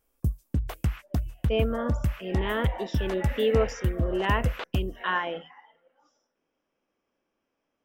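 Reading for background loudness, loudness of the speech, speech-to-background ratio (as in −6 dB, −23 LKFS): −31.0 LKFS, −30.0 LKFS, 1.0 dB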